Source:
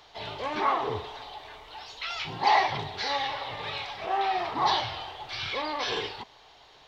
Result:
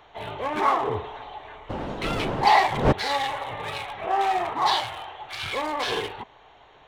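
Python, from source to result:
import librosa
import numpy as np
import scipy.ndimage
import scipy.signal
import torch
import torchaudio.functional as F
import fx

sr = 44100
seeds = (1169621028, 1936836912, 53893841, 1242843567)

y = fx.wiener(x, sr, points=9)
y = fx.dmg_wind(y, sr, seeds[0], corner_hz=570.0, level_db=-22.0, at=(1.69, 2.91), fade=0.02)
y = fx.low_shelf(y, sr, hz=440.0, db=-8.5, at=(4.53, 5.44))
y = y * librosa.db_to_amplitude(4.5)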